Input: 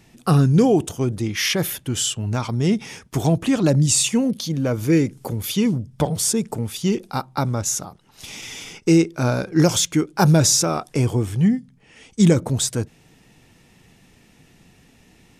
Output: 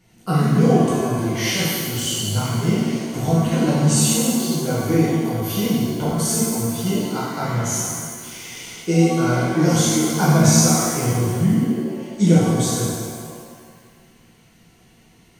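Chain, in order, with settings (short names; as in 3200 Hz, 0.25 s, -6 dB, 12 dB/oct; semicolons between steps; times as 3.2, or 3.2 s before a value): ripple EQ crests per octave 1.9, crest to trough 7 dB; shimmer reverb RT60 1.7 s, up +7 st, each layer -8 dB, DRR -8.5 dB; gain -9.5 dB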